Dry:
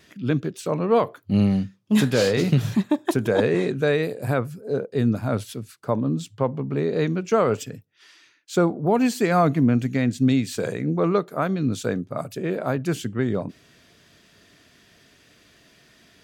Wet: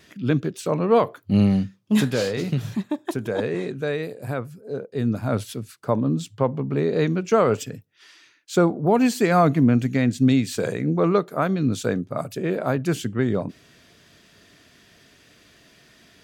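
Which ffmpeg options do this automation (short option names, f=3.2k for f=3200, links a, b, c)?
-af "volume=8dB,afade=t=out:st=1.78:d=0.51:silence=0.473151,afade=t=in:st=4.88:d=0.53:silence=0.473151"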